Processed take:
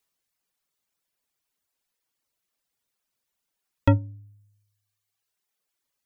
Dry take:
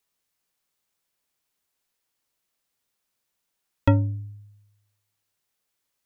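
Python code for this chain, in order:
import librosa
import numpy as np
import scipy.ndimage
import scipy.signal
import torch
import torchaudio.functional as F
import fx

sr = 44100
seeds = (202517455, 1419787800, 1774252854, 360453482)

y = fx.dereverb_blind(x, sr, rt60_s=1.2)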